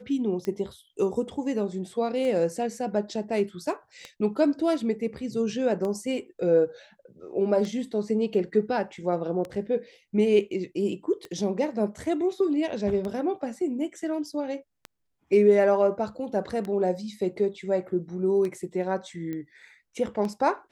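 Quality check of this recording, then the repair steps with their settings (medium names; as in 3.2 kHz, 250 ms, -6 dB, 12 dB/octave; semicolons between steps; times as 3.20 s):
tick 33 1/3 rpm -21 dBFS
19.33 s: pop -23 dBFS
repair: de-click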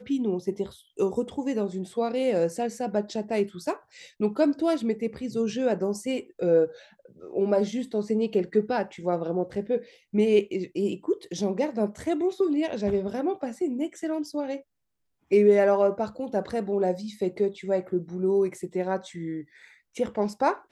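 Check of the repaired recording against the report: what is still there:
nothing left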